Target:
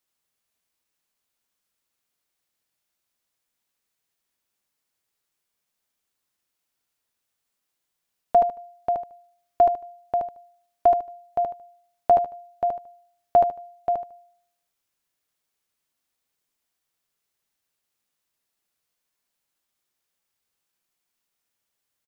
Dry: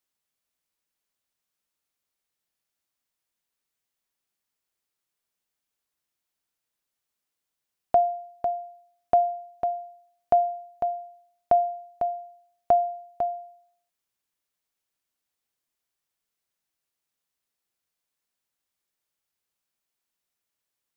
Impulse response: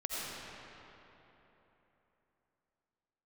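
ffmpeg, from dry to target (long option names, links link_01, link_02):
-af "atempo=0.95,aecho=1:1:75|150|225:0.668|0.16|0.0385,volume=2.5dB"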